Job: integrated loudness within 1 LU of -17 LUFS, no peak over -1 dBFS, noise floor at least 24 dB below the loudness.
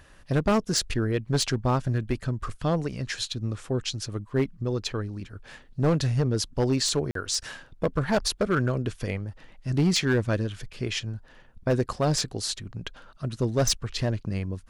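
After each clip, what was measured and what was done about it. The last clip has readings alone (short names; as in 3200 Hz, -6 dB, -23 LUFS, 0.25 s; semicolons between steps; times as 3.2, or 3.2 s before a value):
clipped 1.0%; flat tops at -17.0 dBFS; dropouts 1; longest dropout 43 ms; loudness -27.5 LUFS; peak -17.0 dBFS; loudness target -17.0 LUFS
-> clip repair -17 dBFS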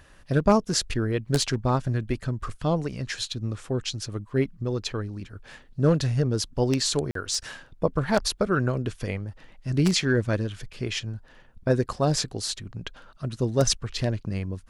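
clipped 0.0%; dropouts 1; longest dropout 43 ms
-> interpolate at 7.11, 43 ms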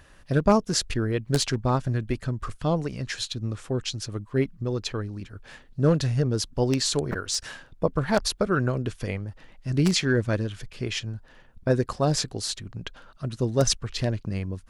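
dropouts 0; loudness -26.5 LUFS; peak -8.0 dBFS; loudness target -17.0 LUFS
-> gain +9.5 dB; limiter -1 dBFS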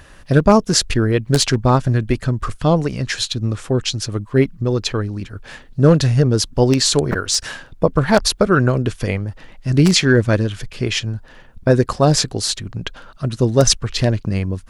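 loudness -17.5 LUFS; peak -1.0 dBFS; noise floor -43 dBFS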